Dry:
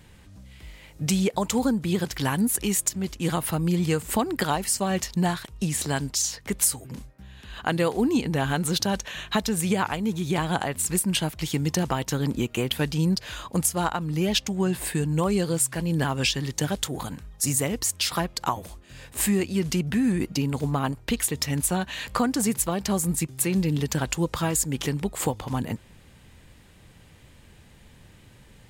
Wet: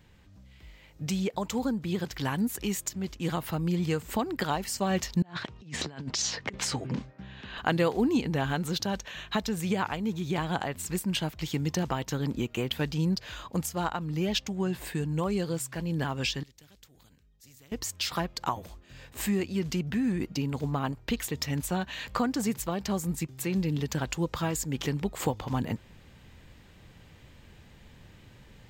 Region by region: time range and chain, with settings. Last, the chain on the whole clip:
5.22–7.58 air absorption 130 m + negative-ratio compressor -34 dBFS, ratio -0.5 + HPF 120 Hz
16.43–17.72 passive tone stack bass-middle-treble 10-0-1 + spectral compressor 2:1
whole clip: bell 10000 Hz -13 dB 0.56 oct; vocal rider 2 s; gain -4.5 dB

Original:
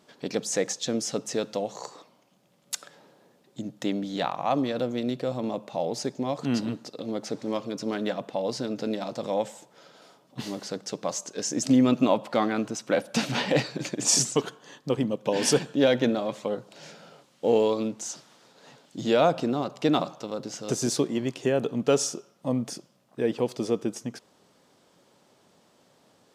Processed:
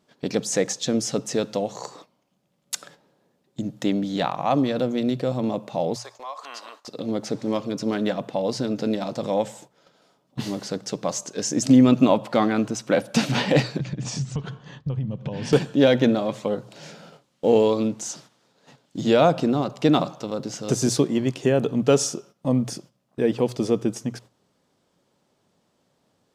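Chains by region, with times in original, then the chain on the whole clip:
5.96–6.88 HPF 640 Hz 24 dB/oct + bell 1100 Hz +14.5 dB 0.22 oct + compressor 2:1, threshold -40 dBFS
13.79–15.53 LPF 4100 Hz + resonant low shelf 200 Hz +12.5 dB, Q 1.5 + compressor, threshold -32 dBFS
whole clip: gate -50 dBFS, range -11 dB; low shelf 140 Hz +11 dB; notches 60/120 Hz; gain +3 dB

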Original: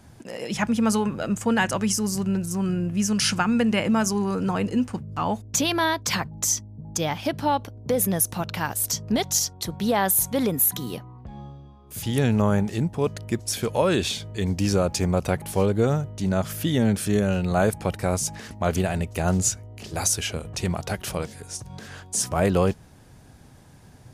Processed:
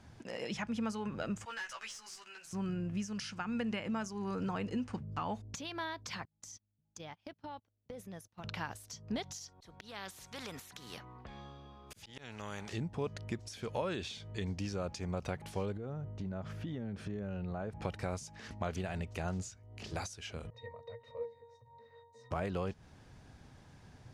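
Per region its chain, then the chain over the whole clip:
1.45–2.53 HPF 1500 Hz + tube stage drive 32 dB, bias 0.2 + doubler 13 ms -3 dB
6.25–8.44 gate -27 dBFS, range -35 dB + compressor, threshold -37 dBFS
9.48–12.73 auto swell 0.789 s + spectral compressor 2:1
15.77–17.82 LPF 1000 Hz 6 dB/oct + compressor 8:1, threshold -28 dBFS
20.5–22.31 resonant low shelf 370 Hz -9 dB, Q 3 + octave resonator A#, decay 0.15 s
whole clip: passive tone stack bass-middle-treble 5-5-5; compressor, threshold -43 dBFS; EQ curve 140 Hz 0 dB, 440 Hz +6 dB, 5800 Hz -9 dB, 14000 Hz -25 dB; gain +8 dB

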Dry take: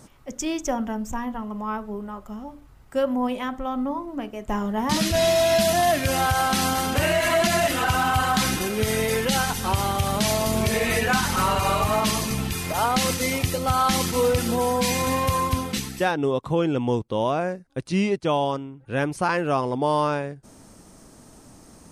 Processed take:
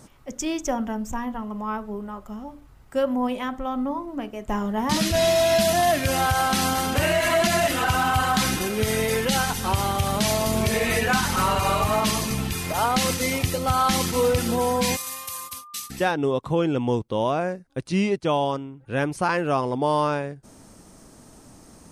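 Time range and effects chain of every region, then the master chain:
14.95–15.89 pre-emphasis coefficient 0.97 + gate -39 dBFS, range -42 dB + whine 1200 Hz -42 dBFS
whole clip: dry

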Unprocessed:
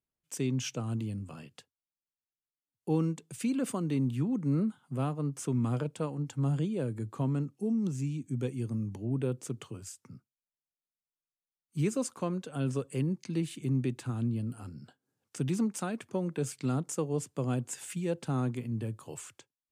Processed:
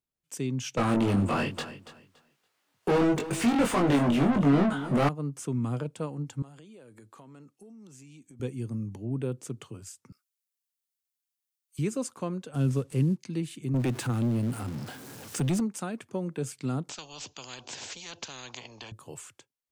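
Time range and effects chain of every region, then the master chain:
0.77–5.09 overdrive pedal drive 35 dB, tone 1700 Hz, clips at -17.5 dBFS + doubler 21 ms -3.5 dB + feedback echo 0.284 s, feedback 23%, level -14 dB
6.42–8.4 HPF 770 Hz 6 dB/oct + compressor 16:1, threshold -46 dBFS
10.12–11.79 Bessel high-pass 1500 Hz + tilt +2.5 dB/oct
12.54–13.17 CVSD 64 kbps + low shelf 200 Hz +10.5 dB
13.74–15.6 zero-crossing step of -44.5 dBFS + HPF 84 Hz + sample leveller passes 2
16.89–18.92 steep low-pass 6900 Hz 96 dB/oct + band shelf 1600 Hz -11 dB 1.1 oct + spectral compressor 10:1
whole clip: dry

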